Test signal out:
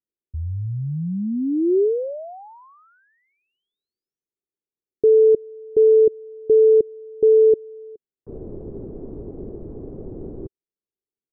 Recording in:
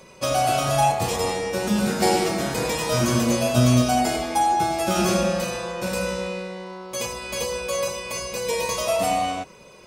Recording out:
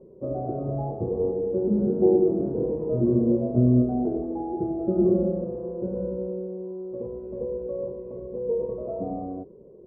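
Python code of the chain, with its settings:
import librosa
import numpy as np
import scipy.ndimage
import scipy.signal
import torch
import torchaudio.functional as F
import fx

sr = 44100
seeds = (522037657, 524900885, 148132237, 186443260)

y = fx.ladder_lowpass(x, sr, hz=450.0, resonance_pct=60)
y = F.gain(torch.from_numpy(y), 7.0).numpy()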